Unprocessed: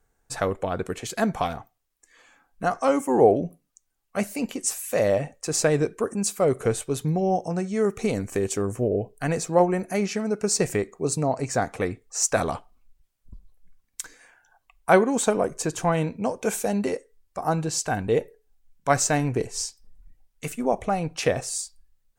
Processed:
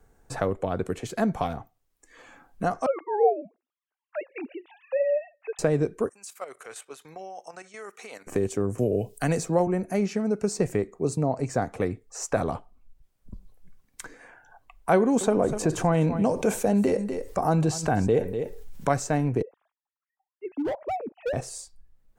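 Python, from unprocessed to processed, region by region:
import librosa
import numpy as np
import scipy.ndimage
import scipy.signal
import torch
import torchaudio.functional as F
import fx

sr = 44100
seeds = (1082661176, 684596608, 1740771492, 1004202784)

y = fx.chain(x, sr, fx.sine_speech(),
    fx.highpass(hz=480.0, slope=12), at=(2.86, 5.59))
y = fx.chain(y, sr, fx.highpass(hz=1400.0, slope=12),
    fx.level_steps(step_db=11), at=(6.09, 8.27))
y = fx.chain(y, sr, fx.high_shelf(hz=3000.0, db=10.0),
    fx.band_squash(depth_pct=40), at=(8.78, 9.67))
y = fx.chain(y, sr, fx.echo_single(ms=247, db=-19.5),
    fx.env_flatten(amount_pct=50), at=(14.96, 18.89))
y = fx.chain(y, sr, fx.sine_speech(),
    fx.bessel_lowpass(hz=830.0, order=2),
    fx.overload_stage(gain_db=26.0), at=(19.42, 21.33))
y = fx.tilt_shelf(y, sr, db=4.5, hz=970.0)
y = fx.band_squash(y, sr, depth_pct=40)
y = y * 10.0 ** (-4.0 / 20.0)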